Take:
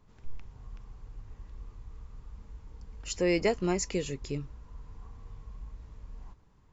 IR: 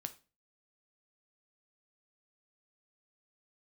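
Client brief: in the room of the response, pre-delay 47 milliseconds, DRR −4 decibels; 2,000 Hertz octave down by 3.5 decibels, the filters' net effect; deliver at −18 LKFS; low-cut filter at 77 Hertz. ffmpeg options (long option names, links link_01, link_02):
-filter_complex "[0:a]highpass=77,equalizer=frequency=2000:width_type=o:gain=-4,asplit=2[link_01][link_02];[1:a]atrim=start_sample=2205,adelay=47[link_03];[link_02][link_03]afir=irnorm=-1:irlink=0,volume=7dB[link_04];[link_01][link_04]amix=inputs=2:normalize=0,volume=8dB"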